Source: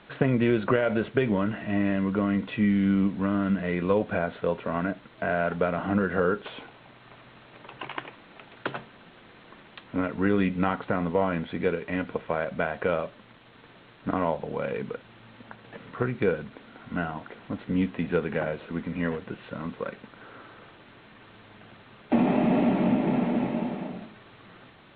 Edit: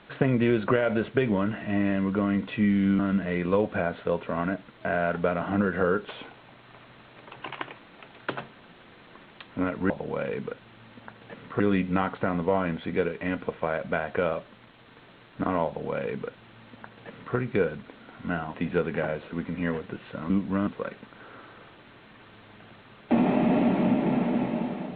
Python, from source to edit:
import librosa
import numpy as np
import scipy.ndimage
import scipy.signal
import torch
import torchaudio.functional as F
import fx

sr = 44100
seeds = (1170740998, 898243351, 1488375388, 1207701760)

y = fx.edit(x, sr, fx.move(start_s=2.99, length_s=0.37, to_s=19.68),
    fx.duplicate(start_s=14.33, length_s=1.7, to_s=10.27),
    fx.cut(start_s=17.21, length_s=0.71), tone=tone)